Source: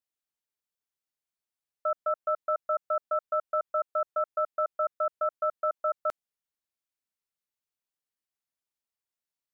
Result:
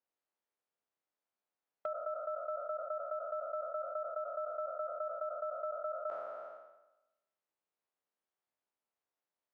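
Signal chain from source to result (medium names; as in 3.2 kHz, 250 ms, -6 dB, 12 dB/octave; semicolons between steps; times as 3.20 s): spectral sustain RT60 1.00 s; compression 4:1, threshold -42 dBFS, peak gain reduction 15 dB; overload inside the chain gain 31.5 dB; band-pass filter 630 Hz, Q 0.75; endings held to a fixed fall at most 180 dB/s; trim +4.5 dB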